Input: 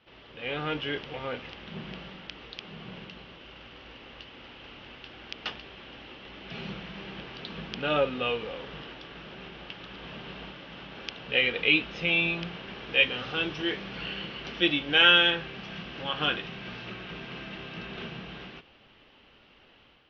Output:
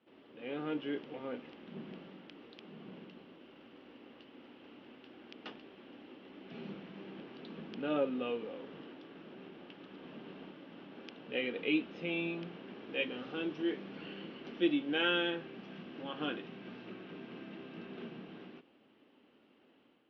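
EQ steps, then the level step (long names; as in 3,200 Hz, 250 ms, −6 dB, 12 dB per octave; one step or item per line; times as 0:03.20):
resonant band-pass 270 Hz, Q 2.2
spectral tilt +3.5 dB per octave
+7.0 dB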